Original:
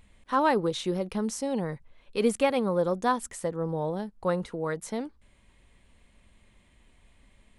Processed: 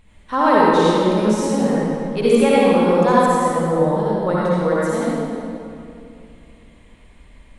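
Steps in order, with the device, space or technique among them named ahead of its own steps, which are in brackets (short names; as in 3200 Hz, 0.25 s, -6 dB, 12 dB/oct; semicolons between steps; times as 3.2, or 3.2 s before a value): swimming-pool hall (reverb RT60 2.6 s, pre-delay 53 ms, DRR -7.5 dB; high shelf 5300 Hz -5 dB); gain +3.5 dB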